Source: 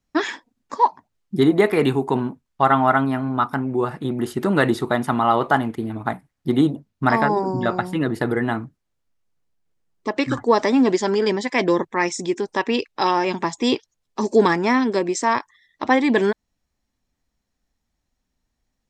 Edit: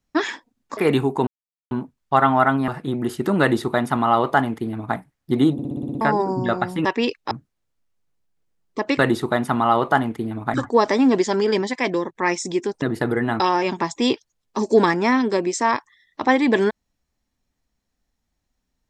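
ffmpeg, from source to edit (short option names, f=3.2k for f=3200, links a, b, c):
-filter_complex "[0:a]asplit=19[a][b][c][d][e][f][g][h][i][j][k][l][m][n][o][p][q][r][s];[a]atrim=end=0.772[t];[b]atrim=start=1.688:end=2.19,asetpts=PTS-STARTPTS,afade=t=out:st=0.498:d=0.004:c=hsin,apad=pad_dur=0.44[u];[c]atrim=start=2.19:end=3.162,asetpts=PTS-STARTPTS,afade=t=in:d=0.004:c=hsin[v];[d]atrim=start=3.848:end=6.762[w];[e]atrim=start=6.698:end=6.762[x];[f]atrim=start=6.698:end=6.762[y];[g]atrim=start=6.698:end=6.762[z];[h]atrim=start=6.698:end=6.762[aa];[i]atrim=start=6.698:end=6.762[ab];[j]atrim=start=6.698:end=6.762[ac];[k]atrim=start=6.698:end=6.762[ad];[l]atrim=start=7.178:end=8.022[ae];[m]atrim=start=12.558:end=13.022[af];[n]atrim=start=8.598:end=10.282[ag];[o]atrim=start=4.578:end=6.132[ah];[p]atrim=start=10.278:end=11.89,asetpts=PTS-STARTPTS,afade=t=out:st=1.132:d=0.48:silence=0.354813[ai];[q]atrim=start=11.89:end=12.562,asetpts=PTS-STARTPTS,afade=t=in:d=0.004:c=hsin:silence=0.354813[aj];[r]atrim=start=8.018:end=8.602[ak];[s]atrim=start=13.018[al];[u][v]concat=n=2:v=0:a=1[am];[t][am]acrossfade=d=0.004:c1=hsin:c2=hsin[an];[an][w]acrossfade=d=0.004:c1=hsin:c2=hsin[ao];[ao][x]acrossfade=d=0.004:c1=hsin:c2=hsin[ap];[ap][y]acrossfade=d=0.004:c1=hsin:c2=hsin[aq];[aq][z]acrossfade=d=0.004:c1=hsin:c2=hsin[ar];[ar][aa]acrossfade=d=0.004:c1=hsin:c2=hsin[as];[as][ab]acrossfade=d=0.004:c1=hsin:c2=hsin[at];[at][ac]acrossfade=d=0.004:c1=hsin:c2=hsin[au];[au][ad]acrossfade=d=0.004:c1=hsin:c2=hsin[av];[av][ae]acrossfade=d=0.004:c1=hsin:c2=hsin[aw];[aw][af]acrossfade=d=0.004:c1=hsin:c2=hsin[ax];[ax][ag]acrossfade=d=0.004:c1=hsin:c2=hsin[ay];[ay][ah]acrossfade=d=0.004:c1=hsin:c2=hsin[az];[ai][aj]concat=n=2:v=0:a=1[ba];[az][ba]acrossfade=d=0.004:c1=hsin:c2=hsin[bb];[bb][ak]acrossfade=d=0.004:c1=hsin:c2=hsin[bc];[bc][al]acrossfade=d=0.004:c1=hsin:c2=hsin"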